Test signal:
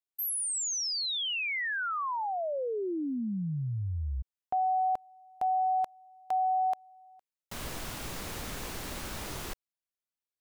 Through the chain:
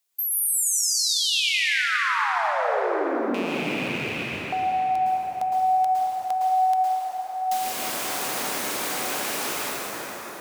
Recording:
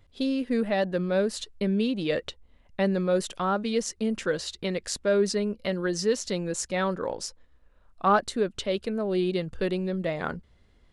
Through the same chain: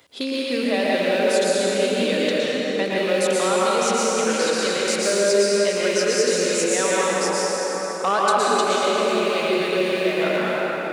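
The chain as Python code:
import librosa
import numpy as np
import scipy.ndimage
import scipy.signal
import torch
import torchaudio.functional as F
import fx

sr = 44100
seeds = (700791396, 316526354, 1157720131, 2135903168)

y = fx.rattle_buzz(x, sr, strikes_db=-36.0, level_db=-29.0)
y = fx.high_shelf(y, sr, hz=3500.0, db=8.0)
y = 10.0 ** (-11.5 / 20.0) * np.tanh(y / 10.0 ** (-11.5 / 20.0))
y = scipy.signal.sosfilt(scipy.signal.butter(2, 320.0, 'highpass', fs=sr, output='sos'), y)
y = fx.rev_plate(y, sr, seeds[0], rt60_s=4.6, hf_ratio=0.5, predelay_ms=100, drr_db=-7.5)
y = fx.band_squash(y, sr, depth_pct=40)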